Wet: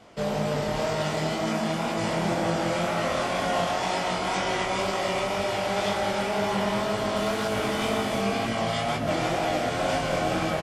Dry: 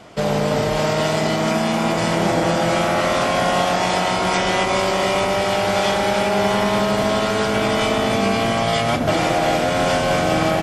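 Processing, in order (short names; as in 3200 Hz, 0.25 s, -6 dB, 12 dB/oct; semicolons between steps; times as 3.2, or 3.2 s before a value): 7.16–8.22 delta modulation 64 kbps, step -26.5 dBFS; on a send: echo 0.167 s -9.5 dB; on the sum: chorus 2 Hz, delay 18 ms, depth 7.2 ms; gain -5.5 dB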